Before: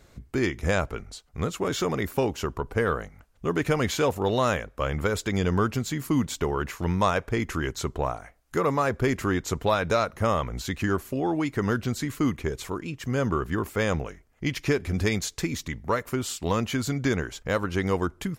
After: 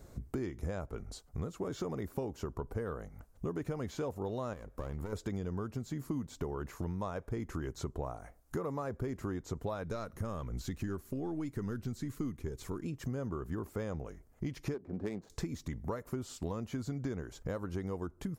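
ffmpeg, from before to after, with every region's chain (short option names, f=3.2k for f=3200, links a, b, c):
-filter_complex "[0:a]asettb=1/sr,asplit=3[a][b][c];[a]atrim=end=4.534[d];[b]atrim=start=4.53:end=5.13,asetpts=PTS-STARTPTS,afade=t=in:d=0.004:c=qsin,afade=t=out:st=0.596:d=0.004:c=qsin,acompressor=threshold=-29dB:ratio=4:attack=3.2:release=140:knee=1:detection=peak,aeval=exprs='clip(val(0),-1,0.0119)':c=same[e];[c]atrim=start=5.126[f];[d][e]acrossfade=d=0.004:c1=hsin:c2=qsin[g];[g][f]acrossfade=d=0.004:c1=qsin:c2=hsin,asettb=1/sr,asplit=3[h][i][j];[h]atrim=end=9.834[k];[i]atrim=start=9.83:end=12.84,asetpts=PTS-STARTPTS,afade=t=in:d=0.004:c=qsin,afade=t=out:st=3.006:d=0.004:c=qsin,aeval=exprs='if(lt(val(0),0),0.708*val(0),val(0))':c=same,equalizer=f=710:t=o:w=1.4:g=-6.5[l];[j]atrim=start=12.836[m];[k][l]acrossfade=d=0.004:c1=hsin:c2=qsin[n];[n][m]acrossfade=d=0.004:c1=qsin:c2=hsin,asettb=1/sr,asplit=3[o][p][q];[o]atrim=end=14.744[r];[p]atrim=start=14.74:end=15.3,asetpts=PTS-STARTPTS,afade=t=in:d=0.004:c=qsin,afade=t=out:st=0.556:d=0.004:c=qsin,highpass=210,adynamicsmooth=sensitivity=2:basefreq=660[s];[q]atrim=start=15.296[t];[r][s]acrossfade=d=0.004:c1=hsin:c2=qsin[u];[u][t]acrossfade=d=0.004:c1=qsin:c2=hsin,acrossover=split=6100[v][w];[w]acompressor=threshold=-50dB:ratio=4:attack=1:release=60[x];[v][x]amix=inputs=2:normalize=0,equalizer=f=2.7k:w=0.61:g=-13,acompressor=threshold=-38dB:ratio=5,volume=2.5dB"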